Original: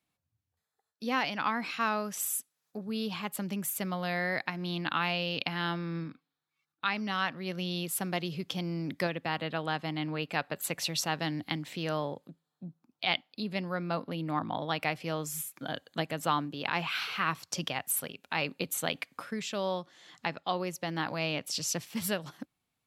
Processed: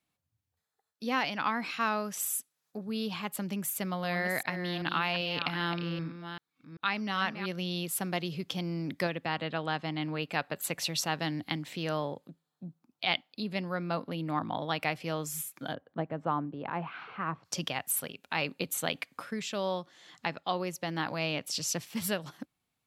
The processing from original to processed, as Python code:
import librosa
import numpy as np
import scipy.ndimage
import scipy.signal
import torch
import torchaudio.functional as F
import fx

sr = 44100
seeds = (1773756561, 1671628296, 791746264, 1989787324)

y = fx.reverse_delay(x, sr, ms=390, wet_db=-9.0, at=(3.65, 7.46))
y = fx.lowpass(y, sr, hz=7900.0, slope=12, at=(9.25, 10.01))
y = fx.lowpass(y, sr, hz=1100.0, slope=12, at=(15.73, 17.44), fade=0.02)